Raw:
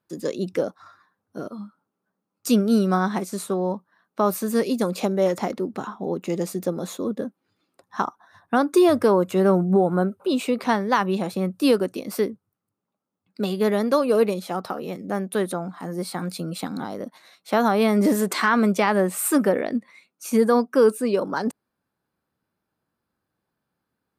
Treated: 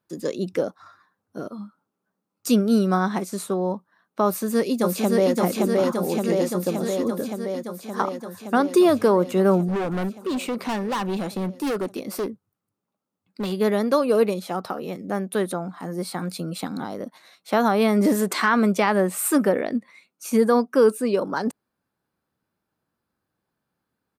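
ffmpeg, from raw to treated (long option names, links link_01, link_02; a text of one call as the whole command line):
ffmpeg -i in.wav -filter_complex "[0:a]asplit=2[link_01][link_02];[link_02]afade=type=in:start_time=4.26:duration=0.01,afade=type=out:start_time=5.35:duration=0.01,aecho=0:1:570|1140|1710|2280|2850|3420|3990|4560|5130|5700|6270|6840:0.841395|0.631046|0.473285|0.354964|0.266223|0.199667|0.14975|0.112313|0.0842345|0.0631759|0.0473819|0.0355364[link_03];[link_01][link_03]amix=inputs=2:normalize=0,asettb=1/sr,asplit=3[link_04][link_05][link_06];[link_04]atrim=end=7.234[link_07];[link_05]atrim=start=7.23:end=8.07,asetpts=PTS-STARTPTS,afade=type=in:duration=0.004:curve=qsin,afade=type=out:start_time=0.836:duration=0.004:curve=qsin,bandreject=frequency=2700:width=12[link_08];[link_06]atrim=start=8.066[link_09];[link_07][link_08]acrossfade=duration=0.004:curve1=hsin:curve2=qsin[link_10];[link_10][link_09]acrossfade=duration=0.004:curve1=qsin:curve2=hsin,asettb=1/sr,asplit=3[link_11][link_12][link_13];[link_11]atrim=end=9.684[link_14];[link_12]atrim=start=9.68:end=13.52,asetpts=PTS-STARTPTS,afade=type=in:duration=0.004:curve=qsin,afade=type=out:start_time=3.836:duration=0.004:curve=qsin,volume=22.5dB,asoftclip=hard,volume=-22.5dB[link_15];[link_13]atrim=start=13.516[link_16];[link_14][link_15]acrossfade=duration=0.004:curve1=hsin:curve2=qsin[link_17];[link_17][link_16]acrossfade=duration=0.004:curve1=qsin:curve2=hsin" out.wav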